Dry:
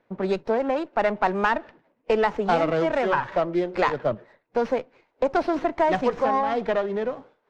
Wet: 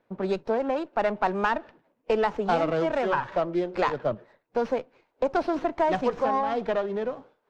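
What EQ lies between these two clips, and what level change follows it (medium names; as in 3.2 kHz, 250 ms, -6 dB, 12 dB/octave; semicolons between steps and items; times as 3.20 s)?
peaking EQ 2 kHz -3.5 dB 0.37 oct; -2.5 dB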